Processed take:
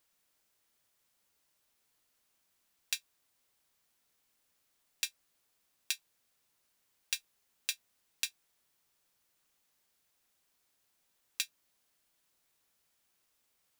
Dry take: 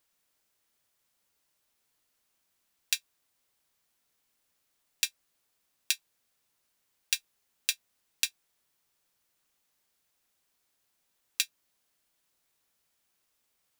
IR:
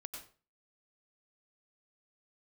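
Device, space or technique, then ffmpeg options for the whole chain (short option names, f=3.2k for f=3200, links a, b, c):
limiter into clipper: -af "alimiter=limit=-9dB:level=0:latency=1:release=83,asoftclip=type=hard:threshold=-12.5dB"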